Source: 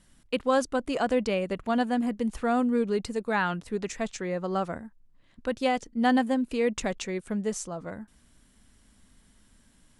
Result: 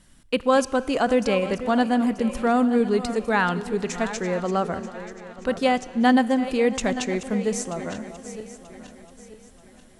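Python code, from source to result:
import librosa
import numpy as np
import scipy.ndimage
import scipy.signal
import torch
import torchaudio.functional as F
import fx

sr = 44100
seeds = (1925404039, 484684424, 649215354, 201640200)

y = fx.reverse_delay_fb(x, sr, ms=467, feedback_pct=59, wet_db=-12.5)
y = fx.rev_schroeder(y, sr, rt60_s=3.5, comb_ms=25, drr_db=17.5)
y = y * 10.0 ** (5.0 / 20.0)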